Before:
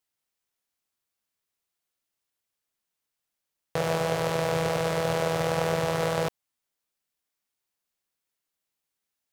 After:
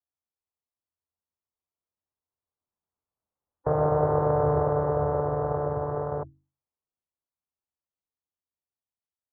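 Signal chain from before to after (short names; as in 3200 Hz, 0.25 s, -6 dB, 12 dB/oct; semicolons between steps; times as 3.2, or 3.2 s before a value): Doppler pass-by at 4.12, 9 m/s, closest 8.2 m; bell 90 Hz +13 dB 0.34 oct; notches 50/100/150/200/250/300/350 Hz; formant-preserving pitch shift -1.5 st; inverse Chebyshev low-pass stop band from 2400 Hz, stop band 40 dB; gain +4.5 dB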